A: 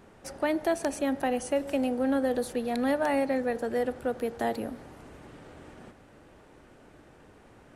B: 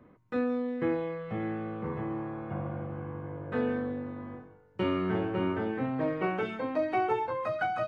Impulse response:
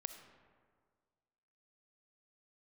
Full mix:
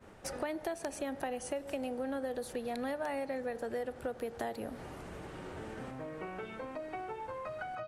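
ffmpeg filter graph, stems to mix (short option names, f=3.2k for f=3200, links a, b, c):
-filter_complex "[0:a]agate=range=-33dB:threshold=-51dB:ratio=3:detection=peak,volume=2.5dB,asplit=2[a][b];[1:a]acompressor=threshold=-32dB:ratio=6,volume=-5dB[c];[b]apad=whole_len=347211[d];[c][d]sidechaincompress=threshold=-37dB:ratio=8:attack=16:release=1350[e];[a][e]amix=inputs=2:normalize=0,equalizer=f=260:w=2.1:g=-4.5,acompressor=threshold=-36dB:ratio=4"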